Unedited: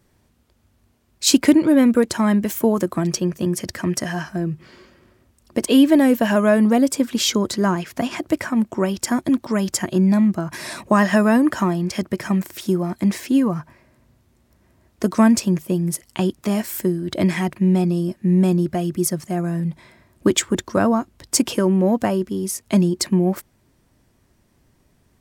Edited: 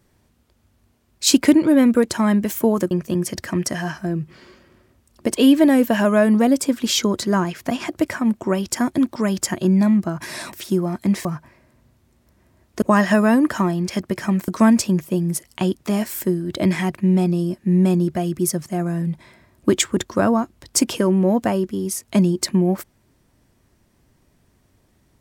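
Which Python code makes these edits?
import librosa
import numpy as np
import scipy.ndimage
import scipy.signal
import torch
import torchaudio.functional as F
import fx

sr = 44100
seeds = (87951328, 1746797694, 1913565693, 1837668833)

y = fx.edit(x, sr, fx.cut(start_s=2.91, length_s=0.31),
    fx.move(start_s=10.84, length_s=1.66, to_s=15.06),
    fx.cut(start_s=13.22, length_s=0.27), tone=tone)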